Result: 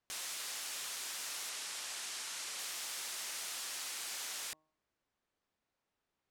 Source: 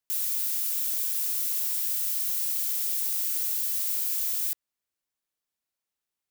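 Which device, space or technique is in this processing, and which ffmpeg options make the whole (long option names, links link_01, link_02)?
through cloth: -filter_complex "[0:a]lowpass=7200,highshelf=frequency=2400:gain=-14.5,bandreject=frequency=156:width_type=h:width=4,bandreject=frequency=312:width_type=h:width=4,bandreject=frequency=468:width_type=h:width=4,bandreject=frequency=624:width_type=h:width=4,bandreject=frequency=780:width_type=h:width=4,bandreject=frequency=936:width_type=h:width=4,bandreject=frequency=1092:width_type=h:width=4,asettb=1/sr,asplit=3[link_01][link_02][link_03];[link_01]atrim=end=1.494[link_04];[link_02]atrim=start=1.49:end=2.59,asetpts=PTS-STARTPTS,afade=type=in:duration=0.004:curve=qsin,afade=type=out:start_time=1.096:duration=0.004:curve=qsin,lowpass=11000[link_05];[link_03]atrim=start=2.586[link_06];[link_04][link_05]acrossfade=duration=0.004:curve1=hsin:curve2=qsin[link_07];[link_07][link_06]acrossfade=duration=0.004:curve1=qsin:curve2=hsin,volume=10.5dB"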